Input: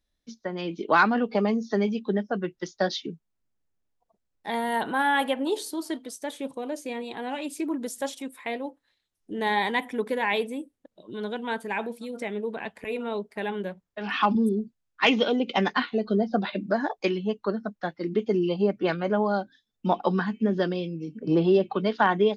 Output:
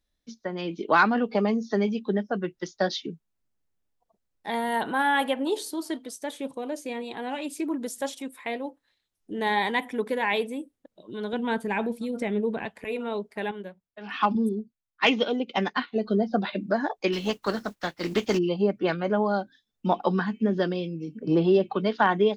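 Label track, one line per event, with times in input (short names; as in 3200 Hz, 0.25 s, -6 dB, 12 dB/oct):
11.330000	12.660000	low shelf 290 Hz +11 dB
13.510000	15.960000	upward expander, over -39 dBFS
17.120000	18.370000	spectral contrast lowered exponent 0.58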